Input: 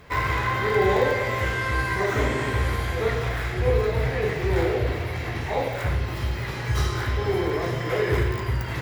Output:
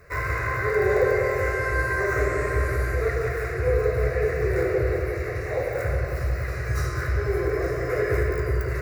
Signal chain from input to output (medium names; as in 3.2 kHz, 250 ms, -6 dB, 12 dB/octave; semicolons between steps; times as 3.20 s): static phaser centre 880 Hz, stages 6; filtered feedback delay 181 ms, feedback 69%, low-pass 2 kHz, level -4 dB